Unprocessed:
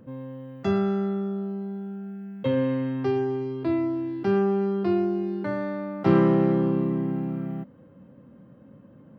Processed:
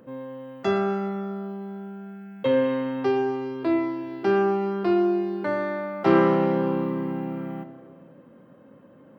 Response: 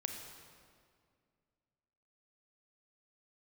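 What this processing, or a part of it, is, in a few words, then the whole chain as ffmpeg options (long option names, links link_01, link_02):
filtered reverb send: -filter_complex "[0:a]bass=frequency=250:gain=-11,treble=frequency=4000:gain=6,asplit=2[link_01][link_02];[link_02]highpass=frequency=180:poles=1,lowpass=3900[link_03];[1:a]atrim=start_sample=2205[link_04];[link_03][link_04]afir=irnorm=-1:irlink=0,volume=-1dB[link_05];[link_01][link_05]amix=inputs=2:normalize=0"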